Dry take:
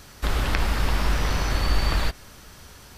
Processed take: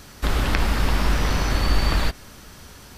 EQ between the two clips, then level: peaking EQ 240 Hz +3.5 dB 1.1 oct; +2.0 dB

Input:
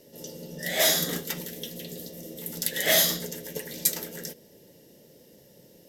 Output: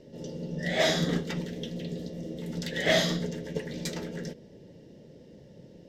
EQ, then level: distance through air 150 m; bass shelf 290 Hz +10 dB; 0.0 dB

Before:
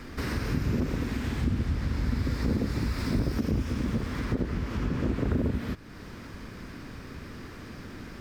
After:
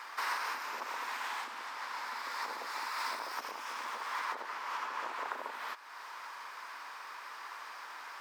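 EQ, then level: ladder high-pass 840 Hz, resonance 60%; +10.0 dB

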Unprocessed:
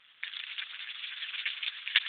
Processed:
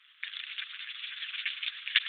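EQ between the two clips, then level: steep high-pass 1.1 kHz 36 dB/octave; 0.0 dB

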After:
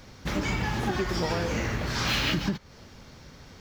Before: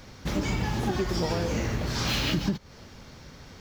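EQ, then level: dynamic bell 1.7 kHz, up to +6 dB, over -46 dBFS, Q 0.71; -1.5 dB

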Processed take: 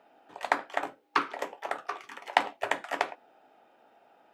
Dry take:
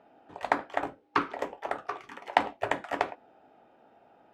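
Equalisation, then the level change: high-pass 180 Hz 6 dB/octave; tilt EQ +2 dB/octave; 0.0 dB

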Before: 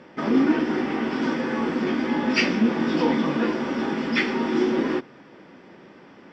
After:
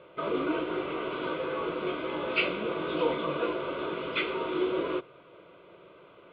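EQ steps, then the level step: elliptic low-pass 4 kHz, stop band 50 dB; peaking EQ 710 Hz +6.5 dB 0.55 oct; static phaser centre 1.2 kHz, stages 8; -2.0 dB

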